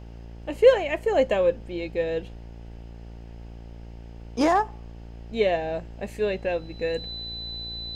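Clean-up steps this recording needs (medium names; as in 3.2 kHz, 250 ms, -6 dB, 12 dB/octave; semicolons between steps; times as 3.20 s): de-hum 57.4 Hz, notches 16; band-stop 4 kHz, Q 30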